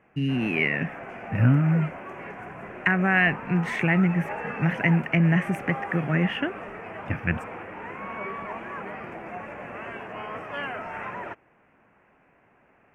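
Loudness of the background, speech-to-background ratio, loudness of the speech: −36.5 LKFS, 12.0 dB, −24.5 LKFS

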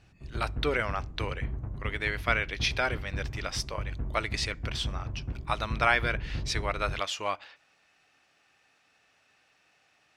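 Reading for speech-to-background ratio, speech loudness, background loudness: 6.5 dB, −31.5 LKFS, −38.0 LKFS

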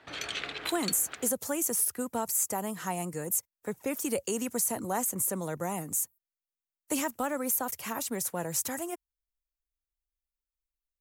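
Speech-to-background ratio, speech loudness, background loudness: 5.5 dB, −31.0 LKFS, −36.5 LKFS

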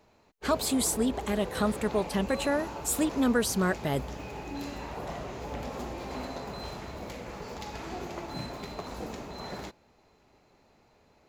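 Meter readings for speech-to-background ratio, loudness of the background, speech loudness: 10.0 dB, −39.0 LKFS, −29.0 LKFS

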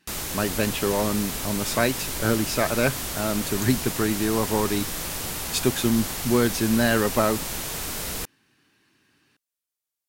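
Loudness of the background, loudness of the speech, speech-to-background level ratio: −29.0 LKFS, −25.0 LKFS, 4.0 dB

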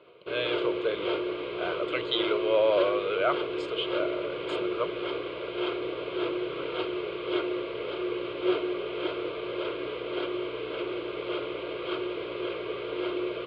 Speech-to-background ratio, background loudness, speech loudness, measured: 2.5 dB, −32.5 LKFS, −30.0 LKFS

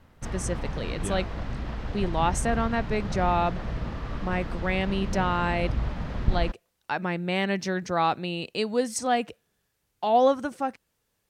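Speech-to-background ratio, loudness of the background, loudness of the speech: 5.5 dB, −33.5 LKFS, −28.0 LKFS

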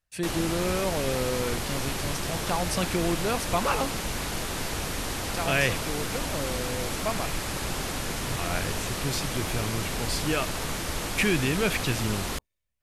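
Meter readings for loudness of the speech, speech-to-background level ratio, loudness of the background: −30.5 LKFS, 0.5 dB, −31.0 LKFS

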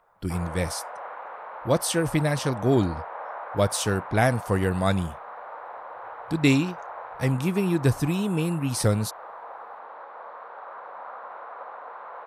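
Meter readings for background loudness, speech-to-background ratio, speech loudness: −39.0 LKFS, 13.5 dB, −25.5 LKFS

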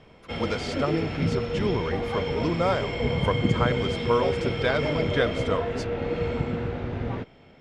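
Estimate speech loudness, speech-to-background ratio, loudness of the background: −29.5 LKFS, −1.5 dB, −28.0 LKFS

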